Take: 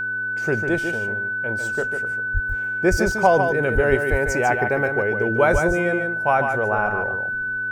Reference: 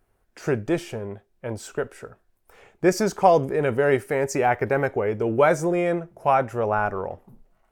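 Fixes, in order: de-hum 114.4 Hz, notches 4; band-stop 1.5 kHz, Q 30; de-plosive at 2.33/2.90/3.74/4.10/5.52 s; inverse comb 148 ms -6.5 dB

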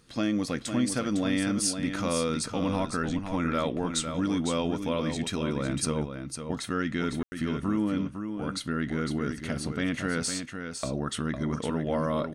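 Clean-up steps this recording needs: room tone fill 7.23–7.32 s; inverse comb 505 ms -7.5 dB

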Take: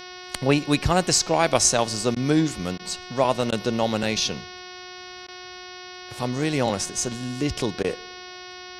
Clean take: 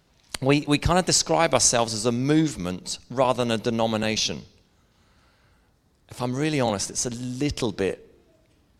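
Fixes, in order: de-hum 363.7 Hz, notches 16; interpolate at 2.15/2.78/3.51/5.27/7.83 s, 12 ms

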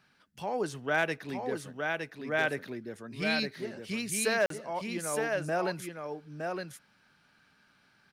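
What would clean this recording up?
clip repair -18 dBFS; interpolate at 4.46 s, 43 ms; inverse comb 914 ms -4.5 dB

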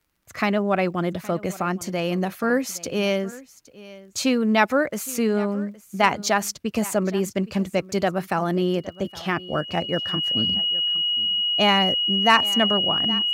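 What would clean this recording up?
clip repair -4.5 dBFS; de-click; band-stop 2.9 kHz, Q 30; inverse comb 817 ms -19.5 dB

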